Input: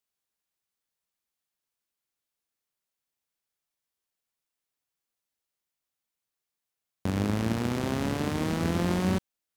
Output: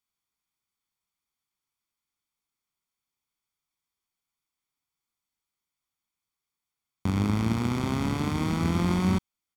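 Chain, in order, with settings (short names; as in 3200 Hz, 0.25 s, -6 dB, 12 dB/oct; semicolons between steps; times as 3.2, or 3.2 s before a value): high shelf 9400 Hz -5.5 dB; comb 0.9 ms, depth 54%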